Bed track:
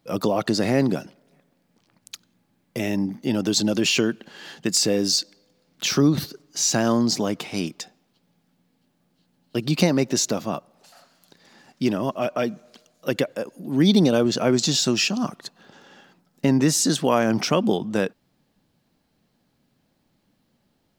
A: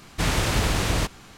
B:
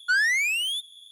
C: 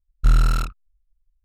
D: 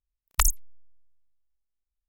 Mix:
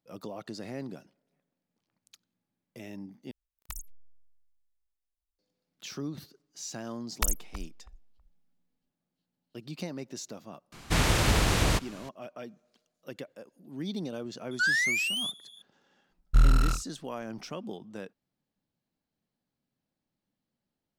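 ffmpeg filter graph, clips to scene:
-filter_complex "[4:a]asplit=2[s0][s1];[0:a]volume=0.119[s2];[s0]acompressor=threshold=0.0282:ratio=6:attack=3.2:release=140:knee=1:detection=peak[s3];[s1]asplit=2[s4][s5];[s5]adelay=323,lowpass=f=840:p=1,volume=0.355,asplit=2[s6][s7];[s7]adelay=323,lowpass=f=840:p=1,volume=0.24,asplit=2[s8][s9];[s9]adelay=323,lowpass=f=840:p=1,volume=0.24[s10];[s4][s6][s8][s10]amix=inputs=4:normalize=0[s11];[s2]asplit=2[s12][s13];[s12]atrim=end=3.314[s14];[s3]atrim=end=2.08,asetpts=PTS-STARTPTS,volume=0.562[s15];[s13]atrim=start=5.386[s16];[s11]atrim=end=2.08,asetpts=PTS-STARTPTS,volume=0.501,afade=t=in:d=0.004:c=hsin,afade=t=out:st=2.076:d=0.004:c=hsin,adelay=6830[s17];[1:a]atrim=end=1.37,asetpts=PTS-STARTPTS,volume=0.841,afade=t=in:d=0.004:c=hsin,afade=t=out:st=1.366:d=0.004:c=hsin,adelay=10720[s18];[2:a]atrim=end=1.11,asetpts=PTS-STARTPTS,volume=0.631,afade=t=in:d=0.004:c=hsin,afade=t=out:st=1.106:d=0.004:c=hsin,adelay=14510[s19];[3:a]atrim=end=1.44,asetpts=PTS-STARTPTS,volume=0.596,afade=t=in:d=0.004:c=hsin,afade=t=out:st=1.436:d=0.004:c=hsin,adelay=16100[s20];[s14][s15]acrossfade=d=0.004:c1=hsin:c2=hsin[s21];[s21][s16]acrossfade=d=0.004:c1=hsin:c2=hsin[s22];[s22][s17][s18][s19][s20]amix=inputs=5:normalize=0"

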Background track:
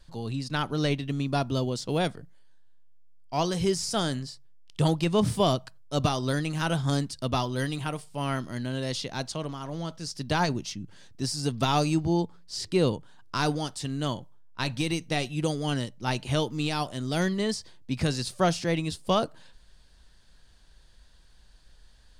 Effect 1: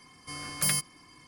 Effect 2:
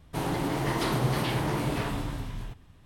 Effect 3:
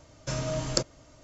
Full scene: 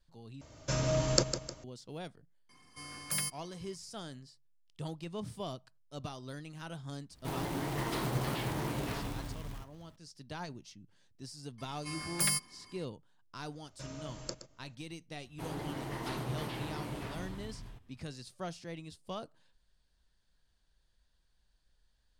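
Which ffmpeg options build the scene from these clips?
-filter_complex "[3:a]asplit=2[s0][s1];[1:a]asplit=2[s2][s3];[2:a]asplit=2[s4][s5];[0:a]volume=0.141[s6];[s0]aecho=1:1:154|308|462|616:0.335|0.127|0.0484|0.0184[s7];[s2]highpass=46[s8];[s4]acrusher=bits=3:mode=log:mix=0:aa=0.000001[s9];[s3]aecho=1:1:5:0.35[s10];[s1]aecho=1:1:120:0.251[s11];[s6]asplit=2[s12][s13];[s12]atrim=end=0.414[s14];[s7]atrim=end=1.23,asetpts=PTS-STARTPTS,volume=0.944[s15];[s13]atrim=start=1.636[s16];[s8]atrim=end=1.27,asetpts=PTS-STARTPTS,volume=0.422,afade=t=in:d=0.004:c=hsin,afade=t=out:st=1.266:d=0.004:c=hsin,adelay=2490[s17];[s9]atrim=end=2.85,asetpts=PTS-STARTPTS,volume=0.422,afade=t=in:d=0.004:c=hsin,afade=t=out:st=2.846:d=0.004:c=hsin,adelay=7110[s18];[s10]atrim=end=1.27,asetpts=PTS-STARTPTS,volume=0.631,afade=t=in:d=0.004:c=hsin,afade=t=out:st=1.266:d=0.004:c=hsin,adelay=11580[s19];[s11]atrim=end=1.23,asetpts=PTS-STARTPTS,volume=0.188,afade=t=in:d=0.004:c=hsin,afade=t=out:st=1.226:d=0.004:c=hsin,adelay=13520[s20];[s5]atrim=end=2.85,asetpts=PTS-STARTPTS,volume=0.266,afade=t=in:d=0.004:c=hsin,afade=t=out:st=2.846:d=0.004:c=hsin,adelay=15250[s21];[s14][s15]acrossfade=d=0.004:c1=hsin:c2=hsin[s22];[s22][s16]acrossfade=d=0.004:c1=hsin:c2=hsin[s23];[s23][s17][s18][s19][s20][s21]amix=inputs=6:normalize=0"

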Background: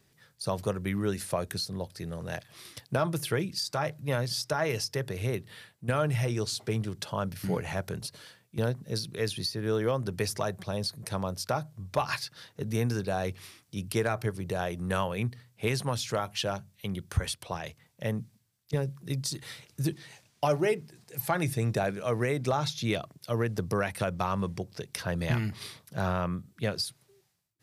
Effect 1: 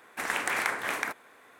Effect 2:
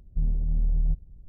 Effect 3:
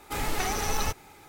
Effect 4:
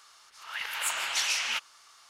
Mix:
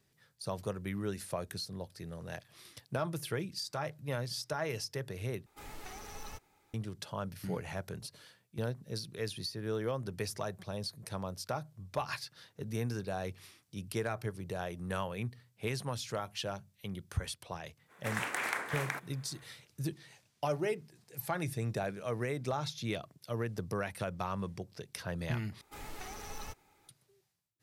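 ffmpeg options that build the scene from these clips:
-filter_complex "[3:a]asplit=2[s0][s1];[0:a]volume=0.447,asplit=3[s2][s3][s4];[s2]atrim=end=5.464[s5];[s0]atrim=end=1.28,asetpts=PTS-STARTPTS,volume=0.126[s6];[s3]atrim=start=6.736:end=25.614[s7];[s1]atrim=end=1.28,asetpts=PTS-STARTPTS,volume=0.158[s8];[s4]atrim=start=26.886[s9];[1:a]atrim=end=1.59,asetpts=PTS-STARTPTS,volume=0.501,afade=t=in:d=0.05,afade=t=out:st=1.54:d=0.05,adelay=17870[s10];[s5][s6]acrossfade=d=0.004:c1=hsin:c2=hsin[s11];[s11][s7]acrossfade=d=0.004:c1=hsin:c2=hsin[s12];[s12][s8]acrossfade=d=0.004:c1=hsin:c2=hsin[s13];[s13][s9]acrossfade=d=0.004:c1=hsin:c2=hsin[s14];[s14][s10]amix=inputs=2:normalize=0"

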